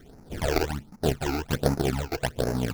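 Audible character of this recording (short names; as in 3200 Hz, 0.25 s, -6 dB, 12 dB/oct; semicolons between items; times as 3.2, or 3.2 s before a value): aliases and images of a low sample rate 1100 Hz, jitter 20%; phasing stages 12, 1.3 Hz, lowest notch 170–3300 Hz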